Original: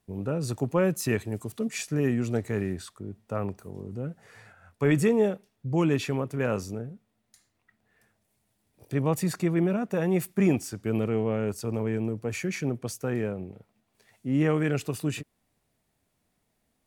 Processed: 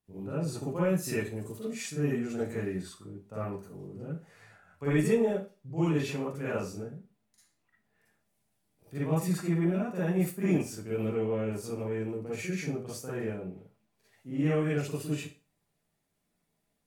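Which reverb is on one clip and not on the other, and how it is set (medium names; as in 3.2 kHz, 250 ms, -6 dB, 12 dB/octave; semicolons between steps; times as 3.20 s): Schroeder reverb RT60 0.31 s, DRR -9 dB; trim -13.5 dB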